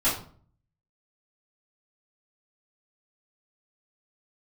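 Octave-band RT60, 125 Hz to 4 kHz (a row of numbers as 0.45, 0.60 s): 0.80, 0.60, 0.50, 0.45, 0.35, 0.30 s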